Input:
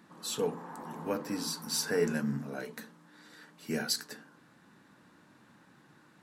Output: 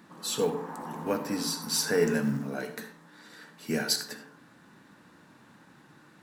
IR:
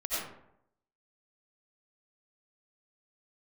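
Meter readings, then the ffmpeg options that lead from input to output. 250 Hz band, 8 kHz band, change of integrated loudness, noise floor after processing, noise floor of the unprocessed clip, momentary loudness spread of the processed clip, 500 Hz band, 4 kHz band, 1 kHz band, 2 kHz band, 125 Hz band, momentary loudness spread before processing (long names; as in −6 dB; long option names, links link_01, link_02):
+4.0 dB, +4.5 dB, +4.0 dB, −58 dBFS, −62 dBFS, 20 LU, +4.5 dB, +4.5 dB, +4.5 dB, +4.5 dB, +4.0 dB, 19 LU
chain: -filter_complex "[0:a]acrusher=bits=8:mode=log:mix=0:aa=0.000001,asplit=2[link_01][link_02];[1:a]atrim=start_sample=2205,asetrate=61740,aresample=44100[link_03];[link_02][link_03]afir=irnorm=-1:irlink=0,volume=-11.5dB[link_04];[link_01][link_04]amix=inputs=2:normalize=0,volume=3dB"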